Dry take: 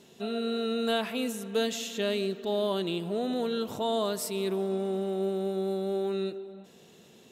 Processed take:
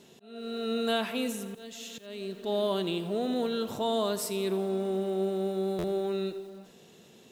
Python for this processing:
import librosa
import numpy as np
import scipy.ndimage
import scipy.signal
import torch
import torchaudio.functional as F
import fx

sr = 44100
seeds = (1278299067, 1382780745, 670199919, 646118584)

y = fx.auto_swell(x, sr, attack_ms=576.0)
y = fx.buffer_glitch(y, sr, at_s=(5.78,), block=512, repeats=4)
y = fx.echo_crushed(y, sr, ms=84, feedback_pct=55, bits=8, wet_db=-15)